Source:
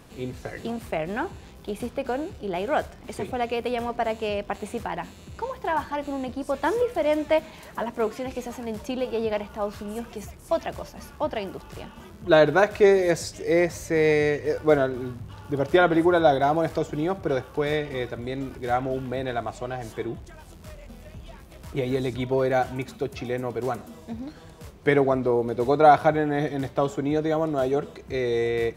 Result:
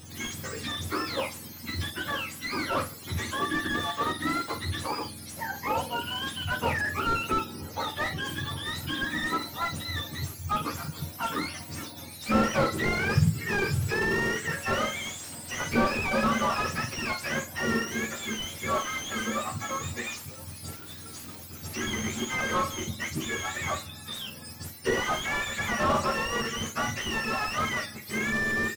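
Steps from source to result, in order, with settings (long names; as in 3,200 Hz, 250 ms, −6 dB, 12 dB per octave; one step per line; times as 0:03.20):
frequency axis turned over on the octave scale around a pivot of 910 Hz
bass and treble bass +4 dB, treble +11 dB
on a send: ambience of single reflections 13 ms −5.5 dB, 50 ms −10 dB
on the sum: slew-rate limiting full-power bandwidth 76 Hz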